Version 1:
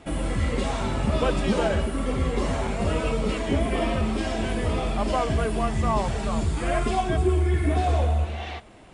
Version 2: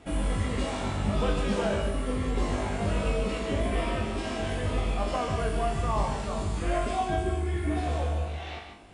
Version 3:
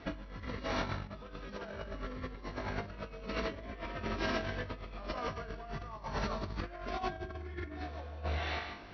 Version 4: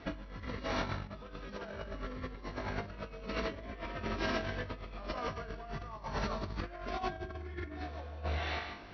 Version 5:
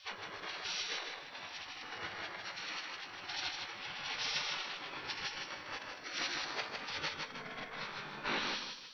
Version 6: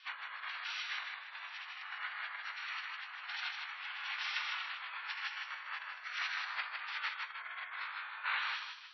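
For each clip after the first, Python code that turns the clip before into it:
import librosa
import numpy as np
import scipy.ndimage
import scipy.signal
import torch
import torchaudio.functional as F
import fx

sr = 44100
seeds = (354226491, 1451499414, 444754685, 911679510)

y1 = fx.rider(x, sr, range_db=3, speed_s=2.0)
y1 = fx.comb_fb(y1, sr, f0_hz=50.0, decay_s=0.46, harmonics='all', damping=0.0, mix_pct=90)
y1 = y1 + 10.0 ** (-7.0 / 20.0) * np.pad(y1, (int(145 * sr / 1000.0), 0))[:len(y1)]
y1 = y1 * librosa.db_to_amplitude(3.0)
y2 = fx.notch(y1, sr, hz=780.0, q=12.0)
y2 = fx.over_compress(y2, sr, threshold_db=-33.0, ratio=-0.5)
y2 = scipy.signal.sosfilt(scipy.signal.cheby1(6, 6, 5900.0, 'lowpass', fs=sr, output='sos'), y2)
y3 = y2
y4 = fx.spec_gate(y3, sr, threshold_db=-20, keep='weak')
y4 = fx.echo_feedback(y4, sr, ms=156, feedback_pct=26, wet_db=-4.5)
y4 = y4 * librosa.db_to_amplitude(9.5)
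y5 = scipy.signal.sosfilt(scipy.signal.butter(2, 2400.0, 'lowpass', fs=sr, output='sos'), y4)
y5 = fx.spec_gate(y5, sr, threshold_db=-30, keep='strong')
y5 = scipy.signal.sosfilt(scipy.signal.butter(4, 1100.0, 'highpass', fs=sr, output='sos'), y5)
y5 = y5 * librosa.db_to_amplitude(4.5)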